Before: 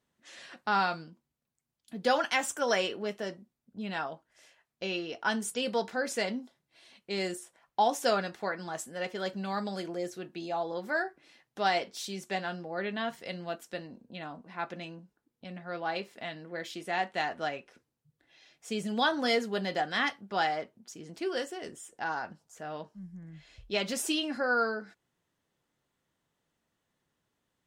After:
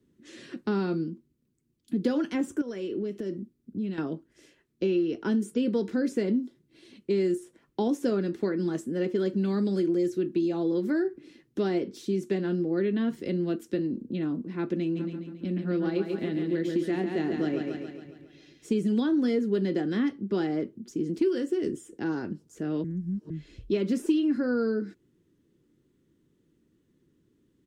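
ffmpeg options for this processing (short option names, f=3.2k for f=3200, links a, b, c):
-filter_complex "[0:a]asettb=1/sr,asplit=3[a][b][c];[a]atrim=end=2.614[d];[b]atrim=start=2.61:end=3.98,asetpts=PTS-STARTPTS,afade=t=in:d=0.004:c=qsin,afade=t=out:st=1.366:d=0.004:c=qsin,acompressor=threshold=-45dB:ratio=3:attack=3.2:release=140:knee=1:detection=peak[e];[c]atrim=start=3.976[f];[d][e]acrossfade=d=0.004:c1=hsin:c2=qsin[g];[g][f]acrossfade=d=0.004:c1=qsin:c2=hsin,asplit=3[h][i][j];[h]afade=t=out:st=14.95:d=0.02[k];[i]aecho=1:1:138|276|414|552|690|828|966:0.501|0.276|0.152|0.0834|0.0459|0.0252|0.0139,afade=t=in:st=14.95:d=0.02,afade=t=out:st=18.79:d=0.02[l];[j]afade=t=in:st=18.79:d=0.02[m];[k][l][m]amix=inputs=3:normalize=0,asplit=3[n][o][p];[n]atrim=end=22.842[q];[o]atrim=start=22.838:end=23.302,asetpts=PTS-STARTPTS,areverse[r];[p]atrim=start=23.298[s];[q][r]acrossfade=d=0.004:c1=hsin:c2=hsin[t];[t][s]acrossfade=d=0.004:c1=hsin:c2=hsin,lowshelf=f=500:t=q:w=3:g=13,acrossover=split=160|900|1900[u][v][w][x];[u]acompressor=threshold=-43dB:ratio=4[y];[v]acompressor=threshold=-25dB:ratio=4[z];[w]acompressor=threshold=-45dB:ratio=4[aa];[x]acompressor=threshold=-48dB:ratio=4[ab];[y][z][aa][ab]amix=inputs=4:normalize=0"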